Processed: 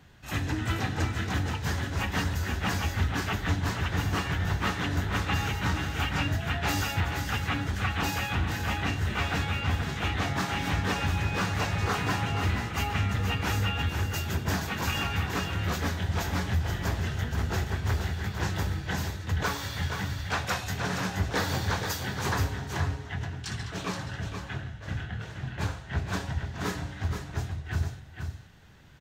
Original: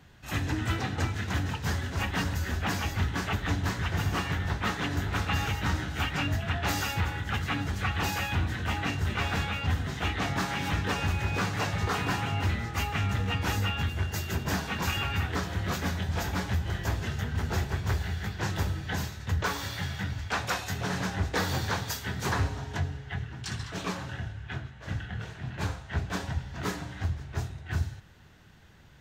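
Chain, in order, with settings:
single-tap delay 475 ms −6.5 dB

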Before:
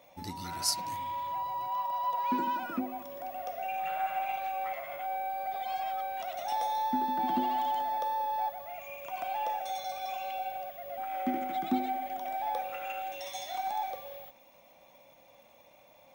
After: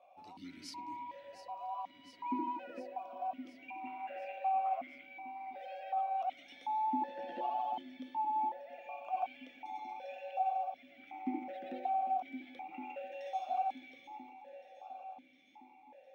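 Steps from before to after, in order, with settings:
0:07.07–0:07.50: double-tracking delay 14 ms −4 dB
delay that swaps between a low-pass and a high-pass 354 ms, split 870 Hz, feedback 80%, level −9.5 dB
formant filter that steps through the vowels 2.7 Hz
level +3.5 dB

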